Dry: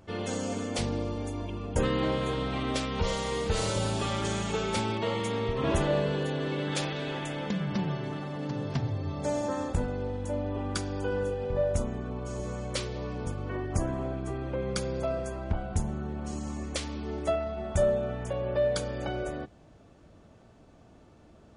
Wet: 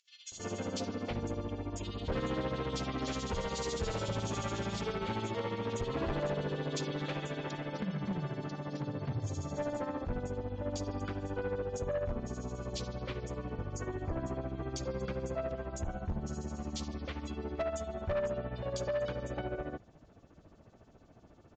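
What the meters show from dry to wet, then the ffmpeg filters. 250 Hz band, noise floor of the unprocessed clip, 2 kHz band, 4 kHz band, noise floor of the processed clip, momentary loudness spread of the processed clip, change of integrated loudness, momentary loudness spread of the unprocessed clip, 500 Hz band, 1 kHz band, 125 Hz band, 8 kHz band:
-5.5 dB, -56 dBFS, -6.0 dB, -7.0 dB, -60 dBFS, 5 LU, -6.0 dB, 8 LU, -6.0 dB, -5.5 dB, -5.5 dB, -6.0 dB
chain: -filter_complex "[0:a]tremolo=f=14:d=0.72,acrossover=split=3100[a][b];[a]adelay=320[c];[c][b]amix=inputs=2:normalize=0,aresample=16000,asoftclip=type=tanh:threshold=-28.5dB,aresample=44100"

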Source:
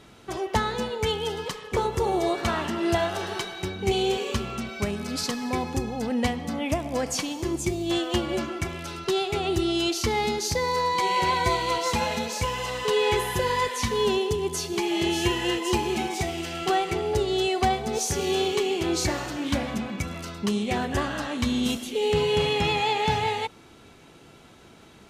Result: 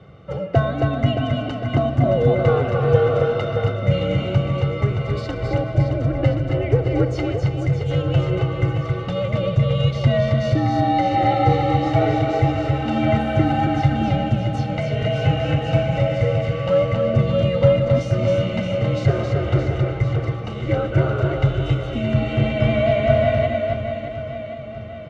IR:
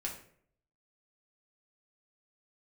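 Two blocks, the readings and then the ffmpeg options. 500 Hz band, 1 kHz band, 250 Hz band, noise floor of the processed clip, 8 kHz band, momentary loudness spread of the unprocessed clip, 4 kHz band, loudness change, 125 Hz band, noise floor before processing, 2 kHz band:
+6.5 dB, +2.5 dB, +5.5 dB, -30 dBFS, under -15 dB, 7 LU, -4.5 dB, +6.0 dB, +16.0 dB, -51 dBFS, +0.5 dB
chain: -filter_complex "[0:a]tiltshelf=f=730:g=7.5,aecho=1:1:1.3:0.76,afreqshift=-200,asplit=2[a][b];[b]asoftclip=type=hard:threshold=-17dB,volume=-9dB[c];[a][c]amix=inputs=2:normalize=0,highpass=110,lowpass=2.5k,asplit=2[d][e];[e]aecho=0:1:270|621|1077|1670|2442:0.631|0.398|0.251|0.158|0.1[f];[d][f]amix=inputs=2:normalize=0,volume=2dB"

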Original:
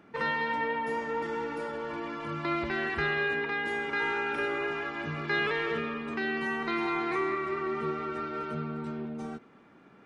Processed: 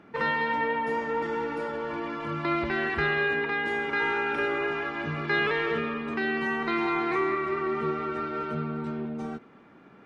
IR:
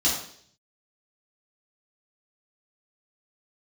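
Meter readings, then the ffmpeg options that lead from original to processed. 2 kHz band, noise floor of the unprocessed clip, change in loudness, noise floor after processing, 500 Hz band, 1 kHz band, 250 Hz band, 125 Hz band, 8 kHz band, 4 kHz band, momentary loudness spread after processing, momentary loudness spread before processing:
+3.0 dB, -56 dBFS, +3.0 dB, -53 dBFS, +3.5 dB, +3.5 dB, +3.5 dB, +3.5 dB, n/a, +2.0 dB, 7 LU, 7 LU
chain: -af "highshelf=f=7.1k:g=-10.5,volume=3.5dB"

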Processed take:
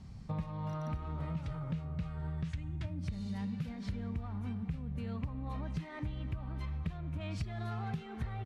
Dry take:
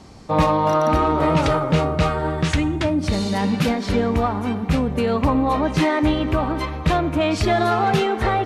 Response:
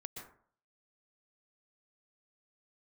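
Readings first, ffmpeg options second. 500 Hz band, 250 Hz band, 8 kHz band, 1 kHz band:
-29.0 dB, -20.0 dB, under -25 dB, -27.5 dB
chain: -af "firequalizer=gain_entry='entry(160,0);entry(310,-19);entry(1900,-13);entry(6700,-16)':delay=0.05:min_phase=1,acompressor=threshold=-33dB:ratio=10,volume=-1.5dB"

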